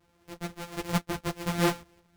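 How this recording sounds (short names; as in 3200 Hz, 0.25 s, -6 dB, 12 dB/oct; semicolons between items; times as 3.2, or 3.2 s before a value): a buzz of ramps at a fixed pitch in blocks of 256 samples; tremolo saw up 1 Hz, depth 60%; a shimmering, thickened sound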